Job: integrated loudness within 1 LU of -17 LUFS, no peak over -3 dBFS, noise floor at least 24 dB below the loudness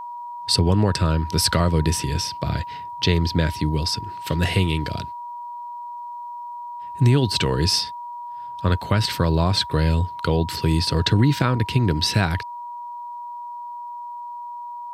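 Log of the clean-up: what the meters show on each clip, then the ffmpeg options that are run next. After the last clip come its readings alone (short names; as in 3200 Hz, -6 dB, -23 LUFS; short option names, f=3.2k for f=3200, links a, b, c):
steady tone 960 Hz; tone level -31 dBFS; loudness -21.5 LUFS; peak -4.0 dBFS; loudness target -17.0 LUFS
-> -af "bandreject=f=960:w=30"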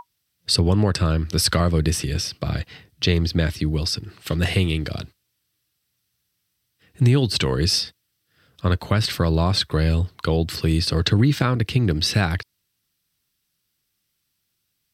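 steady tone none; loudness -21.5 LUFS; peak -4.5 dBFS; loudness target -17.0 LUFS
-> -af "volume=4.5dB,alimiter=limit=-3dB:level=0:latency=1"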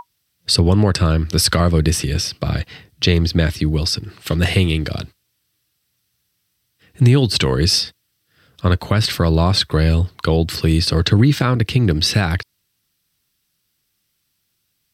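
loudness -17.0 LUFS; peak -3.0 dBFS; noise floor -70 dBFS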